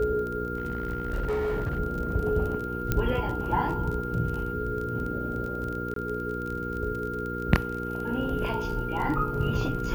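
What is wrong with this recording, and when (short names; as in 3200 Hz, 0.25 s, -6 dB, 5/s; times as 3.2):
crackle 27/s -32 dBFS
hum 60 Hz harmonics 8 -34 dBFS
tone 1400 Hz -34 dBFS
0.57–1.78 clipped -24.5 dBFS
2.92 pop -11 dBFS
5.94–5.96 gap 23 ms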